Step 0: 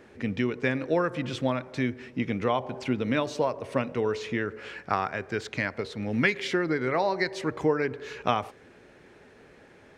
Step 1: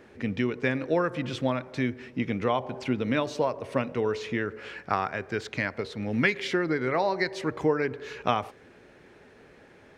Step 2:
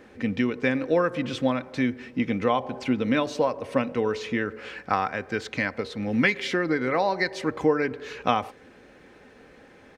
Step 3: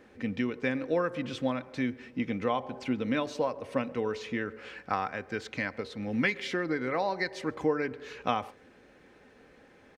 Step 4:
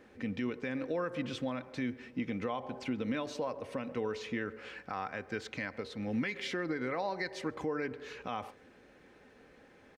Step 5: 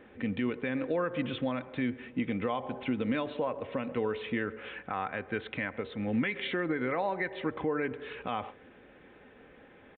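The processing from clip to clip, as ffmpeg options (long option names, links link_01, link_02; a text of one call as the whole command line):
ffmpeg -i in.wav -af "equalizer=frequency=7800:width=1.5:gain=-2" out.wav
ffmpeg -i in.wav -af "aecho=1:1:3.9:0.34,volume=2dB" out.wav
ffmpeg -i in.wav -filter_complex "[0:a]asplit=2[link_01][link_02];[link_02]adelay=134.1,volume=-27dB,highshelf=frequency=4000:gain=-3.02[link_03];[link_01][link_03]amix=inputs=2:normalize=0,volume=-6dB" out.wav
ffmpeg -i in.wav -af "alimiter=limit=-23dB:level=0:latency=1:release=77,volume=-2dB" out.wav
ffmpeg -i in.wav -af "aresample=8000,aresample=44100,volume=4dB" out.wav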